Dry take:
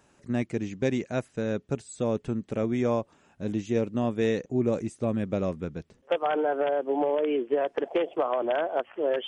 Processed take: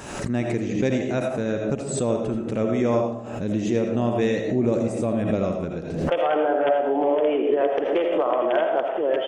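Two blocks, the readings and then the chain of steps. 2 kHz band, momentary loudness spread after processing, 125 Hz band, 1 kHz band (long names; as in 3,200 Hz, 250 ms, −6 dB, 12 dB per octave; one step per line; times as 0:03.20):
+5.0 dB, 5 LU, +5.0 dB, +5.5 dB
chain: echo with shifted repeats 85 ms, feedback 31%, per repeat +85 Hz, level −15 dB
comb and all-pass reverb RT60 0.58 s, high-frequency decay 0.35×, pre-delay 40 ms, DRR 3.5 dB
background raised ahead of every attack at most 51 dB per second
level +2.5 dB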